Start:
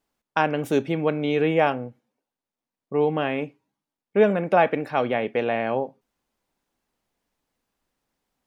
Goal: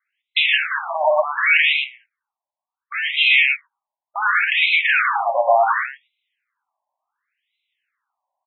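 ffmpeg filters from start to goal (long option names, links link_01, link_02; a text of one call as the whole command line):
ffmpeg -i in.wav -filter_complex "[0:a]bandreject=frequency=50:width_type=h:width=6,bandreject=frequency=100:width_type=h:width=6,bandreject=frequency=150:width_type=h:width=6,bandreject=frequency=200:width_type=h:width=6,bandreject=frequency=250:width_type=h:width=6,bandreject=frequency=300:width_type=h:width=6,bandreject=frequency=350:width_type=h:width=6,bandreject=frequency=400:width_type=h:width=6,bandreject=frequency=450:width_type=h:width=6,acrossover=split=2200[link_01][link_02];[link_01]volume=12.5dB,asoftclip=hard,volume=-12.5dB[link_03];[link_03][link_02]amix=inputs=2:normalize=0,agate=range=-22dB:threshold=-38dB:ratio=16:detection=peak,crystalizer=i=6:c=0,asplit=2[link_04][link_05];[link_05]aecho=0:1:116:0.266[link_06];[link_04][link_06]amix=inputs=2:normalize=0,asplit=2[link_07][link_08];[link_08]highpass=frequency=720:poles=1,volume=34dB,asoftclip=type=tanh:threshold=-1.5dB[link_09];[link_07][link_09]amix=inputs=2:normalize=0,lowpass=frequency=3800:poles=1,volume=-6dB,afftfilt=real='re*between(b*sr/1024,760*pow(2900/760,0.5+0.5*sin(2*PI*0.69*pts/sr))/1.41,760*pow(2900/760,0.5+0.5*sin(2*PI*0.69*pts/sr))*1.41)':imag='im*between(b*sr/1024,760*pow(2900/760,0.5+0.5*sin(2*PI*0.69*pts/sr))/1.41,760*pow(2900/760,0.5+0.5*sin(2*PI*0.69*pts/sr))*1.41)':win_size=1024:overlap=0.75" out.wav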